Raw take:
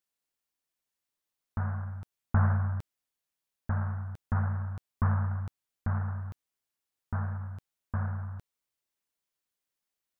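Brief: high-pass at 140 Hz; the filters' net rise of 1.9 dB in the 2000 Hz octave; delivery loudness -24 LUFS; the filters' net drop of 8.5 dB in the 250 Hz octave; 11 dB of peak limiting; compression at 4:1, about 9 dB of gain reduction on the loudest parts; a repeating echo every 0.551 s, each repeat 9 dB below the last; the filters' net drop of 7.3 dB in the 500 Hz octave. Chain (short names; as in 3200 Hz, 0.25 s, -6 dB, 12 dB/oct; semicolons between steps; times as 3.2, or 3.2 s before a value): HPF 140 Hz; bell 250 Hz -8.5 dB; bell 500 Hz -9 dB; bell 2000 Hz +4 dB; compressor 4:1, threshold -38 dBFS; limiter -36 dBFS; feedback echo 0.551 s, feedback 35%, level -9 dB; gain +23.5 dB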